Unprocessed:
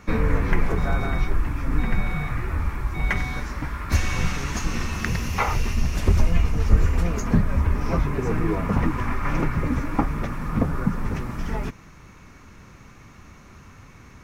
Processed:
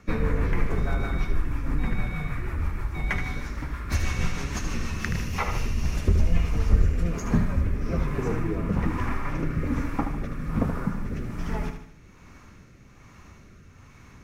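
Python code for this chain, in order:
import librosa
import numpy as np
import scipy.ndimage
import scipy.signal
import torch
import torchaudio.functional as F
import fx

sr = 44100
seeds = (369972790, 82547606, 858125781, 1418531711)

y = fx.rotary_switch(x, sr, hz=6.3, then_hz=1.2, switch_at_s=5.17)
y = fx.echo_feedback(y, sr, ms=76, feedback_pct=45, wet_db=-8)
y = y * librosa.db_to_amplitude(-2.5)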